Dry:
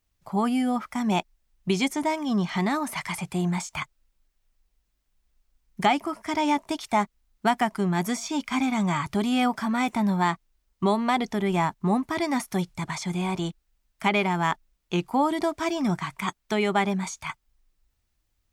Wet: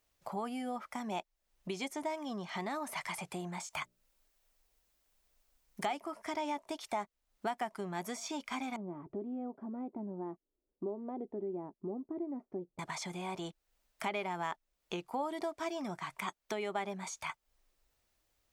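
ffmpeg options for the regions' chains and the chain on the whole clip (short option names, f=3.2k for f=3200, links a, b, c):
-filter_complex "[0:a]asettb=1/sr,asplit=3[a][b][c];[a]atrim=end=3.704[d];[b]atrim=start=3.7:end=5.97,asetpts=PTS-STARTPTS,afade=t=in:d=0.004:c=qsin,afade=t=out:st=2.266:d=0.004:c=qsin,highshelf=f=6.4k:g=5.5,bandreject=f=60:t=h:w=6,bandreject=f=120:t=h:w=6,bandreject=f=180:t=h:w=6,bandreject=f=240:t=h:w=6,bandreject=f=300:t=h:w=6,bandreject=f=360:t=h:w=6,bandreject=f=420:t=h:w=6,bandreject=f=480:t=h:w=6,bandreject=f=540:t=h:w=6,bandreject=f=600:t=h:w=6[e];[c]atrim=start=5.966[f];[d][e]acrossfade=d=0.004:c1=hsin:c2=qsin[g];[g][f]acrossfade=d=0.004:c1=qsin:c2=hsin,asettb=1/sr,asplit=3[h][i][j];[h]atrim=end=8.764[k];[i]atrim=start=8.76:end=12.79,asetpts=PTS-STARTPTS,afade=t=in:d=0.004:c=qsin,afade=t=out:st=4.026:d=0.004:c=qsin,lowpass=f=340:t=q:w=2.6,lowshelf=f=240:g=-11.5[l];[j]atrim=start=12.786[m];[k][l]acrossfade=d=0.004:c1=hsin:c2=qsin[n];[n][m]acrossfade=d=0.004:c1=qsin:c2=hsin,equalizer=f=540:t=o:w=1.1:g=7,acompressor=threshold=-41dB:ratio=2.5,lowshelf=f=240:g=-10.5,volume=1dB"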